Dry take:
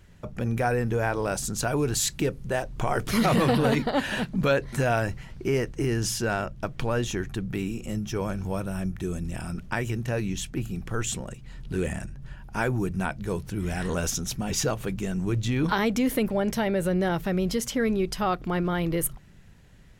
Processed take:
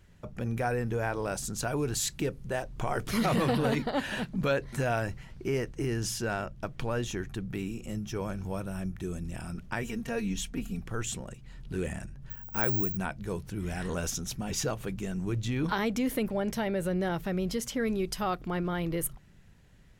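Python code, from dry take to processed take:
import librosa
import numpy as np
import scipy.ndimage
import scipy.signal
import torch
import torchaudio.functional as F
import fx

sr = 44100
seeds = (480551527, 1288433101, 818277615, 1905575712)

y = fx.comb(x, sr, ms=4.3, depth=0.84, at=(9.82, 10.8))
y = fx.resample_bad(y, sr, factor=2, down='filtered', up='zero_stuff', at=(12.3, 12.97))
y = fx.high_shelf(y, sr, hz=fx.line((17.86, 4600.0), (18.42, 7800.0)), db=6.5, at=(17.86, 18.42), fade=0.02)
y = F.gain(torch.from_numpy(y), -5.0).numpy()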